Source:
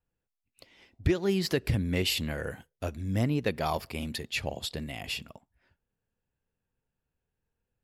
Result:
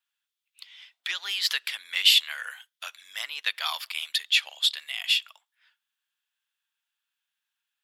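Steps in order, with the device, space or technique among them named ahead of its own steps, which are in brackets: headphones lying on a table (HPF 1200 Hz 24 dB/oct; bell 3400 Hz +11 dB 0.5 oct); gain +5.5 dB

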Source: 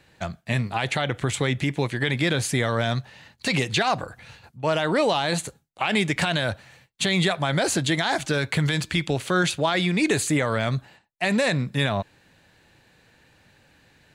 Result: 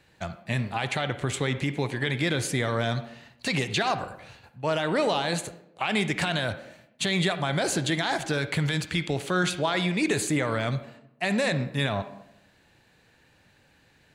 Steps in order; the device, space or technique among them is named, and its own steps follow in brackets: filtered reverb send (on a send: HPF 180 Hz 24 dB/oct + LPF 4100 Hz 12 dB/oct + reverb RT60 0.80 s, pre-delay 47 ms, DRR 11 dB); on the sum: gain -3.5 dB

